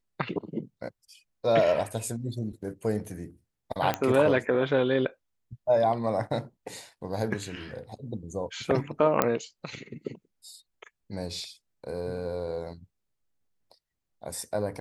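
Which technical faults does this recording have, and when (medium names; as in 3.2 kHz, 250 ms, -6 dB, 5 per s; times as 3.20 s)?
3.94 s: pop -12 dBFS
9.22 s: pop -7 dBFS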